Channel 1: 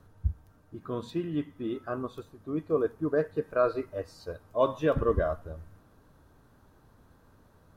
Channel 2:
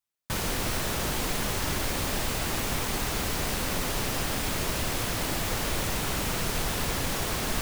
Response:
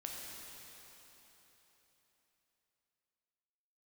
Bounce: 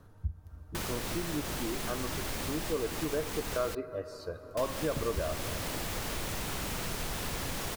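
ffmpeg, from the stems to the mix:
-filter_complex "[0:a]volume=0dB,asplit=2[link_01][link_02];[link_02]volume=-10.5dB[link_03];[1:a]adelay=450,volume=-2.5dB,asplit=3[link_04][link_05][link_06];[link_04]atrim=end=3.75,asetpts=PTS-STARTPTS,afade=type=out:start_time=3.746:duration=0.004:curve=hsin[link_07];[link_05]atrim=start=3.75:end=4.57,asetpts=PTS-STARTPTS,volume=0[link_08];[link_06]atrim=start=4.57,asetpts=PTS-STARTPTS,afade=type=in:duration=0.004:curve=hsin[link_09];[link_07][link_08][link_09]concat=n=3:v=0:a=1[link_10];[2:a]atrim=start_sample=2205[link_11];[link_03][link_11]afir=irnorm=-1:irlink=0[link_12];[link_01][link_10][link_12]amix=inputs=3:normalize=0,acompressor=threshold=-35dB:ratio=2"

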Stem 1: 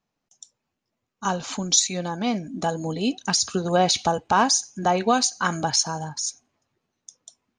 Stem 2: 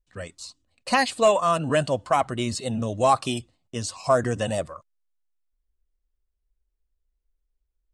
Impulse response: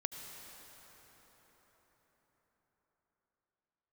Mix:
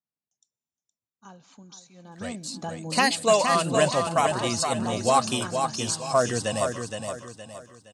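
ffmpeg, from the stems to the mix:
-filter_complex "[0:a]lowshelf=frequency=160:gain=10,alimiter=limit=-13.5dB:level=0:latency=1:release=494,volume=-11dB,afade=type=in:start_time=1.93:duration=0.6:silence=0.237137,asplit=3[link_01][link_02][link_03];[link_02]volume=-17dB[link_04];[link_03]volume=-9.5dB[link_05];[1:a]highshelf=frequency=3500:gain=8,adelay=2050,volume=-2dB,asplit=2[link_06][link_07];[link_07]volume=-6dB[link_08];[2:a]atrim=start_sample=2205[link_09];[link_04][link_09]afir=irnorm=-1:irlink=0[link_10];[link_05][link_08]amix=inputs=2:normalize=0,aecho=0:1:467|934|1401|1868|2335:1|0.37|0.137|0.0507|0.0187[link_11];[link_01][link_06][link_10][link_11]amix=inputs=4:normalize=0,highpass=96"

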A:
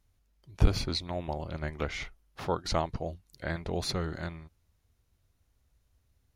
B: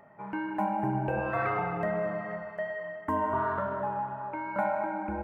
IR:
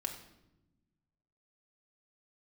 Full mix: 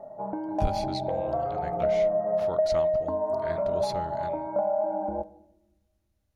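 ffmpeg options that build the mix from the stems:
-filter_complex "[0:a]volume=-6dB,asplit=2[link_01][link_02];[link_02]volume=-22.5dB[link_03];[1:a]acompressor=threshold=-36dB:ratio=10,lowpass=frequency=650:width_type=q:width=4.9,volume=1dB,asplit=2[link_04][link_05];[link_05]volume=-7.5dB[link_06];[2:a]atrim=start_sample=2205[link_07];[link_03][link_06]amix=inputs=2:normalize=0[link_08];[link_08][link_07]afir=irnorm=-1:irlink=0[link_09];[link_01][link_04][link_09]amix=inputs=3:normalize=0"

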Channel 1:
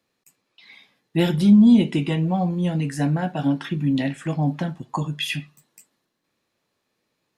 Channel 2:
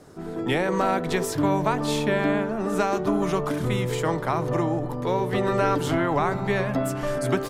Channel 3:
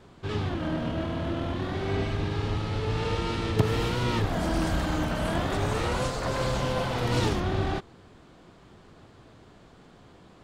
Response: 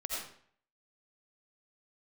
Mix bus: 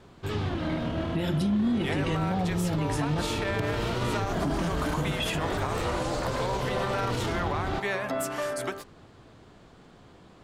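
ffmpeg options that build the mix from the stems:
-filter_complex "[0:a]alimiter=limit=-15.5dB:level=0:latency=1,volume=1dB,asplit=3[link_01][link_02][link_03];[link_01]atrim=end=3.22,asetpts=PTS-STARTPTS,afade=type=out:start_time=3.216:duration=0.004:curve=hsin[link_04];[link_02]atrim=start=3.22:end=4.45,asetpts=PTS-STARTPTS,volume=0[link_05];[link_03]atrim=start=4.45,asetpts=PTS-STARTPTS,afade=type=in:duration=0.004:curve=hsin[link_06];[link_04][link_05][link_06]concat=n=3:v=0:a=1[link_07];[1:a]acontrast=78,highpass=frequency=750:poles=1,dynaudnorm=framelen=130:gausssize=5:maxgain=11.5dB,adelay=1350,volume=-14dB[link_08];[2:a]volume=0dB[link_09];[link_07][link_08][link_09]amix=inputs=3:normalize=0,alimiter=limit=-19.5dB:level=0:latency=1:release=80"

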